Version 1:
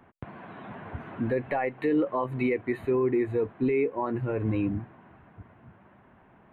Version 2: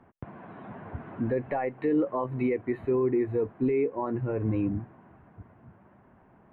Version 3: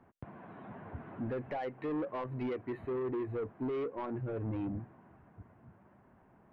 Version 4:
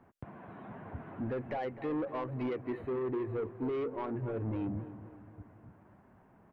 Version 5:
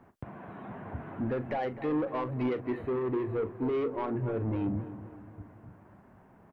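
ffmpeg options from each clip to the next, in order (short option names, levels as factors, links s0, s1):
-af "lowpass=f=1200:p=1"
-af "asoftclip=type=tanh:threshold=0.0473,volume=0.562"
-filter_complex "[0:a]asplit=2[s0][s1];[s1]adelay=256,lowpass=f=2100:p=1,volume=0.224,asplit=2[s2][s3];[s3]adelay=256,lowpass=f=2100:p=1,volume=0.52,asplit=2[s4][s5];[s5]adelay=256,lowpass=f=2100:p=1,volume=0.52,asplit=2[s6][s7];[s7]adelay=256,lowpass=f=2100:p=1,volume=0.52,asplit=2[s8][s9];[s9]adelay=256,lowpass=f=2100:p=1,volume=0.52[s10];[s0][s2][s4][s6][s8][s10]amix=inputs=6:normalize=0,volume=1.12"
-filter_complex "[0:a]asplit=2[s0][s1];[s1]adelay=40,volume=0.211[s2];[s0][s2]amix=inputs=2:normalize=0,volume=1.58"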